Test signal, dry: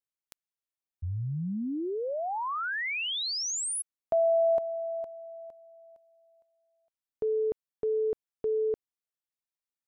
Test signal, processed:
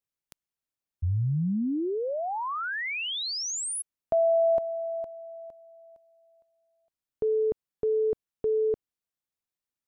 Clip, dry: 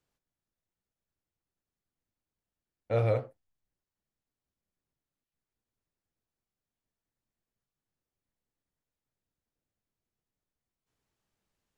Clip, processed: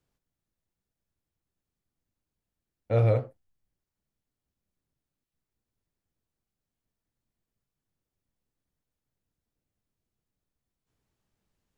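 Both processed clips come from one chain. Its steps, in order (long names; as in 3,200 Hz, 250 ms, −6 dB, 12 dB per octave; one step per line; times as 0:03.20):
low-shelf EQ 350 Hz +7 dB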